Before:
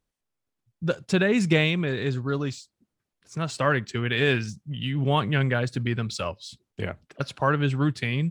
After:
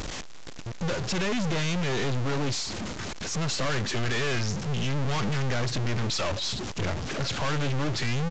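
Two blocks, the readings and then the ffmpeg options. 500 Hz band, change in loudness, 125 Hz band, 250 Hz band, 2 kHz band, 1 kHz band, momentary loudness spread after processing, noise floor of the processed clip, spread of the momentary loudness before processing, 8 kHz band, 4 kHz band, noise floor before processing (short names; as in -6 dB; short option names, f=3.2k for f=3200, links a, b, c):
-4.5 dB, -3.0 dB, -2.5 dB, -4.5 dB, -4.0 dB, -3.0 dB, 7 LU, -37 dBFS, 13 LU, +8.0 dB, +2.0 dB, -83 dBFS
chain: -af "aeval=exprs='val(0)+0.5*0.0251*sgn(val(0))':c=same,aeval=exprs='(tanh(63.1*val(0)+0.7)-tanh(0.7))/63.1':c=same,acompressor=mode=upward:threshold=-46dB:ratio=2.5,aresample=16000,aresample=44100,volume=9dB"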